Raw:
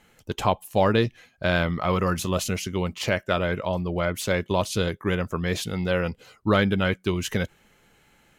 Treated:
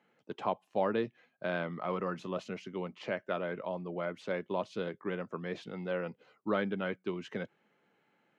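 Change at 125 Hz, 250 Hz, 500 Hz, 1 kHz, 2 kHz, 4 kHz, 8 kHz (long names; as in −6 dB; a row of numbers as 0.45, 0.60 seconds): −17.0 dB, −11.5 dB, −9.5 dB, −10.5 dB, −12.5 dB, −17.5 dB, below −25 dB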